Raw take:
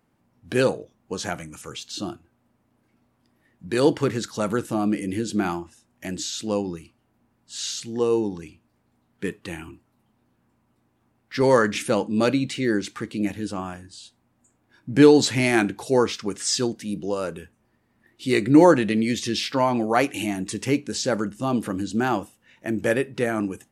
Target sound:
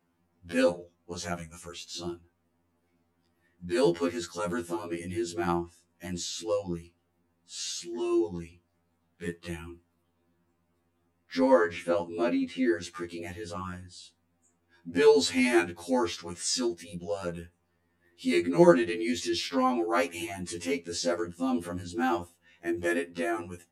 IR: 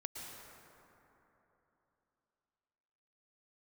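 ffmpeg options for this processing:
-filter_complex "[0:a]asettb=1/sr,asplit=3[a][b][c];[a]atrim=end=11.394[d];[b]atrim=start=11.39:end=12.83,asetpts=PTS-STARTPTS,afade=t=in:d=0.004:c=qsin,afade=t=out:st=1.436:d=0.004:c=qsin,acrossover=split=2700[e][f];[f]acompressor=threshold=-44dB:ratio=4:attack=1:release=60[g];[e][g]amix=inputs=2:normalize=0[h];[c]atrim=start=12.826[i];[d][h]acrossfade=d=0.004:c1=hsin:c2=qsin[j];[j][i]acrossfade=d=0.004:c1=qsin:c2=hsin,afftfilt=real='re*2*eq(mod(b,4),0)':imag='im*2*eq(mod(b,4),0)':win_size=2048:overlap=0.75,volume=-3dB"

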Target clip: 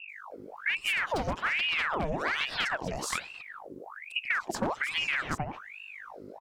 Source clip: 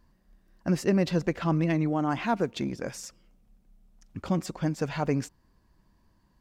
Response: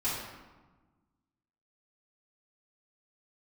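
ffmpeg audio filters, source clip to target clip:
-filter_complex "[0:a]aeval=exprs='val(0)+0.00224*(sin(2*PI*50*n/s)+sin(2*PI*2*50*n/s)/2+sin(2*PI*3*50*n/s)/3+sin(2*PI*4*50*n/s)/4+sin(2*PI*5*50*n/s)/5)':c=same,lowshelf=f=200:g=9.5,acrossover=split=370|2300[a][b][c];[c]adelay=90[d];[b]adelay=310[e];[a][e][d]amix=inputs=3:normalize=0,aeval=exprs='0.119*(abs(mod(val(0)/0.119+3,4)-2)-1)':c=same,lowshelf=f=92:g=-9.5,acompressor=threshold=-34dB:ratio=6,aeval=exprs='val(0)*sin(2*PI*1500*n/s+1500*0.8/1.2*sin(2*PI*1.2*n/s))':c=same,volume=9dB"

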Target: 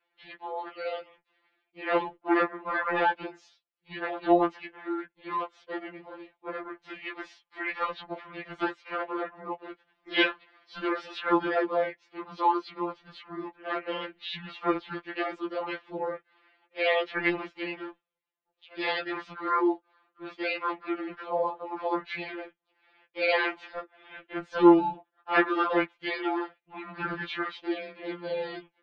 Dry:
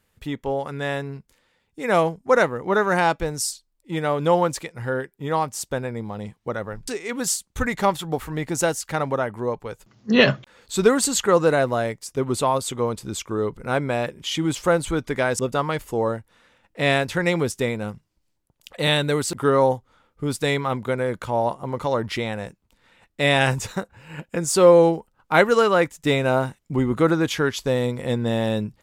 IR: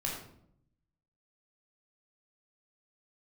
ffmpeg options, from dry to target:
-filter_complex "[0:a]highpass=f=540:t=q:w=0.5412,highpass=f=540:t=q:w=1.307,lowpass=f=3.1k:t=q:w=0.5176,lowpass=f=3.1k:t=q:w=0.7071,lowpass=f=3.1k:t=q:w=1.932,afreqshift=-180,asplit=3[a][b][c];[b]asetrate=52444,aresample=44100,atempo=0.840896,volume=-2dB[d];[c]asetrate=58866,aresample=44100,atempo=0.749154,volume=-2dB[e];[a][d][e]amix=inputs=3:normalize=0,afftfilt=real='re*2.83*eq(mod(b,8),0)':imag='im*2.83*eq(mod(b,8),0)':win_size=2048:overlap=0.75,volume=-6dB"

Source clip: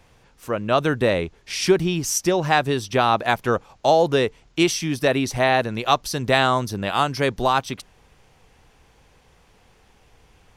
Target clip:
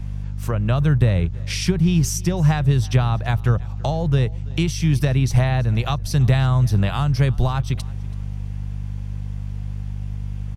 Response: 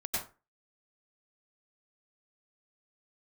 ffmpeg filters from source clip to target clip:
-filter_complex "[0:a]aeval=exprs='val(0)+0.0126*(sin(2*PI*50*n/s)+sin(2*PI*2*50*n/s)/2+sin(2*PI*3*50*n/s)/3+sin(2*PI*4*50*n/s)/4+sin(2*PI*5*50*n/s)/5)':c=same,acrossover=split=180[a][b];[a]aeval=exprs='sgn(val(0))*max(abs(val(0))-0.00316,0)':c=same[c];[b]acompressor=threshold=-29dB:ratio=6[d];[c][d]amix=inputs=2:normalize=0,lowshelf=f=190:t=q:w=1.5:g=9,aecho=1:1:331|662:0.0708|0.0248,volume=4.5dB"

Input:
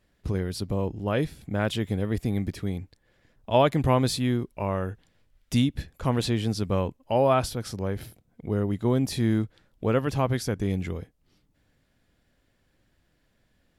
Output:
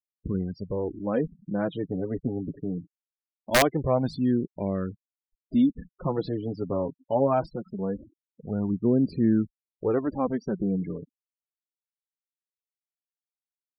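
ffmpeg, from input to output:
-af "flanger=delay=0.4:depth=7:regen=5:speed=0.22:shape=sinusoidal,firequalizer=gain_entry='entry(120,0);entry(170,10);entry(2500,-4)':delay=0.05:min_phase=1,aeval=exprs='(mod(2.24*val(0)+1,2)-1)/2.24':c=same,afftfilt=real='re*gte(hypot(re,im),0.0251)':imag='im*gte(hypot(re,im),0.0251)':win_size=1024:overlap=0.75,volume=-5dB"

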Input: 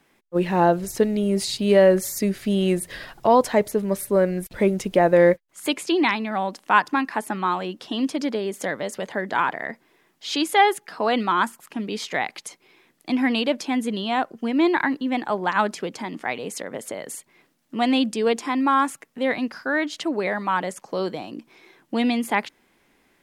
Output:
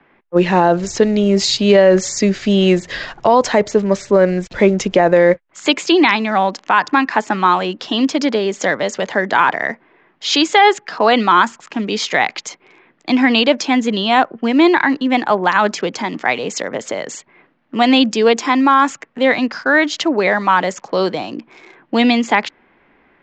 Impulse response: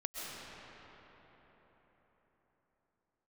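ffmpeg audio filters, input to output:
-filter_complex "[0:a]lowshelf=f=470:g=-4.5,acrossover=split=140|1100|2600[a][b][c][d];[d]aeval=exprs='val(0)*gte(abs(val(0)),0.00188)':c=same[e];[a][b][c][e]amix=inputs=4:normalize=0,alimiter=level_in=12.5dB:limit=-1dB:release=50:level=0:latency=1,volume=-1dB" -ar 16000 -c:a libvorbis -b:a 96k

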